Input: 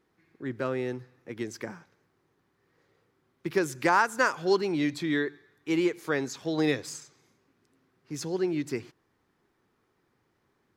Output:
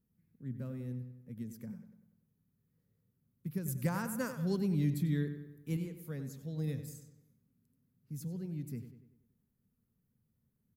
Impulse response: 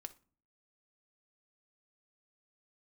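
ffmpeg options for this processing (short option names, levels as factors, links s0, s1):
-filter_complex "[0:a]firequalizer=gain_entry='entry(220,0);entry(330,-24);entry(480,-16);entry(750,-26);entry(5900,-19);entry(12000,2)':delay=0.05:min_phase=1,asettb=1/sr,asplit=3[s0][s1][s2];[s0]atrim=end=3.684[s3];[s1]atrim=start=3.68:end=5.77,asetpts=PTS-STARTPTS,afade=t=in:d=0.004:c=qsin,afade=t=out:st=2.086:d=0.004:c=qsin,acontrast=66[s4];[s2]atrim=start=5.766[s5];[s3][s4]acrossfade=d=0.004:c1=hsin:c2=qsin[s6];[s6][s5]acrossfade=d=0.004:c1=qsin:c2=hsin,asplit=2[s7][s8];[s8]adelay=96,lowpass=f=3700:p=1,volume=0.316,asplit=2[s9][s10];[s10]adelay=96,lowpass=f=3700:p=1,volume=0.51,asplit=2[s11][s12];[s12]adelay=96,lowpass=f=3700:p=1,volume=0.51,asplit=2[s13][s14];[s14]adelay=96,lowpass=f=3700:p=1,volume=0.51,asplit=2[s15][s16];[s16]adelay=96,lowpass=f=3700:p=1,volume=0.51,asplit=2[s17][s18];[s18]adelay=96,lowpass=f=3700:p=1,volume=0.51[s19];[s7][s9][s11][s13][s15][s17][s19]amix=inputs=7:normalize=0"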